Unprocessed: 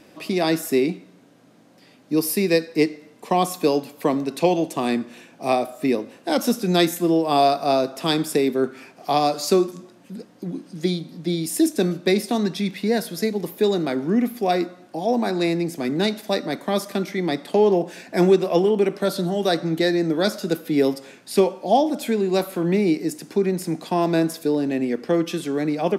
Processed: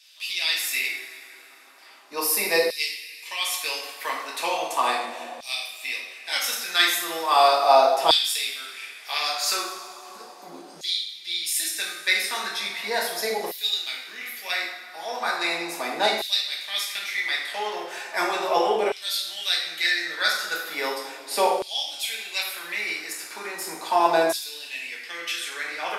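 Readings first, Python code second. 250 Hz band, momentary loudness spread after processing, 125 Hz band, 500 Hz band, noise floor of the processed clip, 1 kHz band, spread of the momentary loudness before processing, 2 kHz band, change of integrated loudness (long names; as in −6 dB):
−19.5 dB, 14 LU, below −25 dB, −7.0 dB, −45 dBFS, +0.5 dB, 8 LU, +6.5 dB, −2.5 dB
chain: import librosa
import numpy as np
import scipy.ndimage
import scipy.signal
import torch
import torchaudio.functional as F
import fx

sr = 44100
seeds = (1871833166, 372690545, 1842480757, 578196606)

y = fx.rev_double_slope(x, sr, seeds[0], early_s=0.61, late_s=3.1, knee_db=-17, drr_db=-3.5)
y = fx.filter_lfo_highpass(y, sr, shape='saw_down', hz=0.37, low_hz=700.0, high_hz=3700.0, q=2.0)
y = y * librosa.db_to_amplitude(-1.5)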